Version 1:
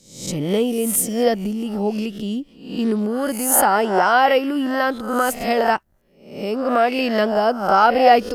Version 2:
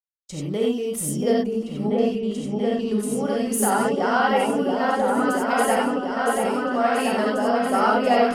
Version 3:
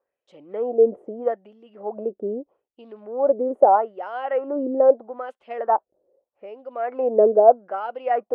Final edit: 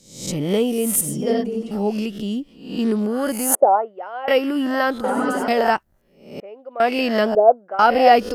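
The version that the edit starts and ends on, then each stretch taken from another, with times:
1
0:01.01–0:01.71: punch in from 2
0:03.55–0:04.28: punch in from 3
0:05.04–0:05.48: punch in from 2
0:06.40–0:06.80: punch in from 3
0:07.35–0:07.79: punch in from 3

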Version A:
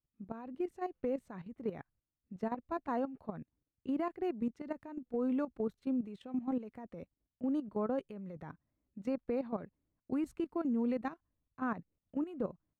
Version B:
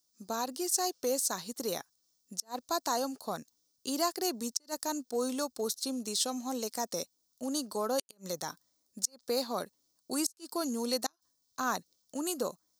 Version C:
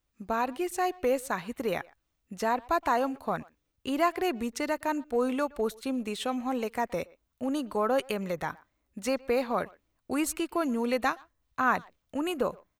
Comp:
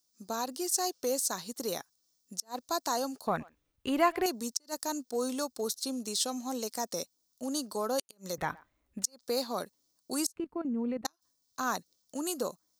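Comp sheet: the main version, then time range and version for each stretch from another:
B
0:03.27–0:04.26: punch in from C
0:08.38–0:09.04: punch in from C
0:10.36–0:11.05: punch in from A

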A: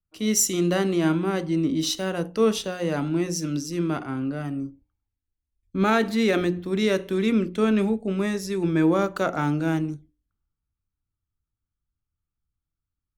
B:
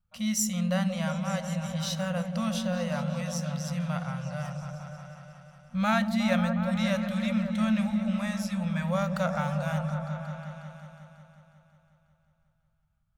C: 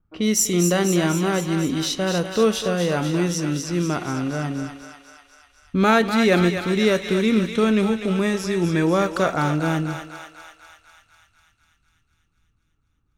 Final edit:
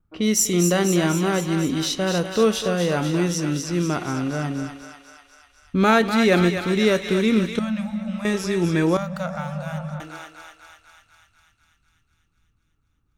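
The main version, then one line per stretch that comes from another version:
C
0:07.59–0:08.25: punch in from B
0:08.97–0:10.00: punch in from B
not used: A

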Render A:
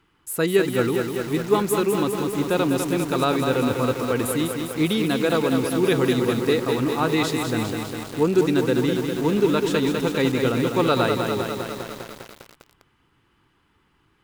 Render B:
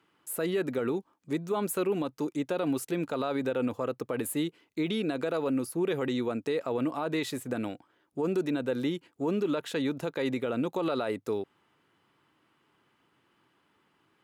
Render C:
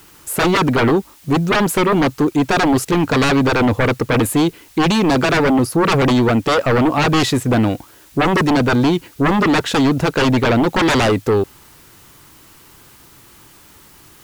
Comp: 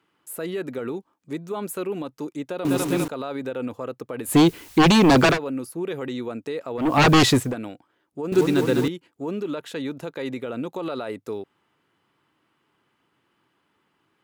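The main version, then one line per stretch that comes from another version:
B
0:02.65–0:03.08: punch in from A
0:04.31–0:05.34: punch in from C, crossfade 0.10 s
0:06.89–0:07.44: punch in from C, crossfade 0.24 s
0:08.32–0:08.88: punch in from A

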